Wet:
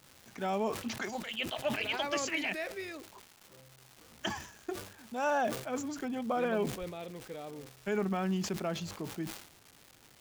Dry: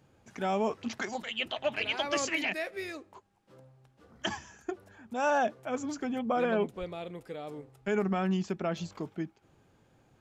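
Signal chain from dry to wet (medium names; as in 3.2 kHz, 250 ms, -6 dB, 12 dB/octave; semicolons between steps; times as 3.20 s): crackle 580 per s -41 dBFS; decay stretcher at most 90 dB/s; trim -3 dB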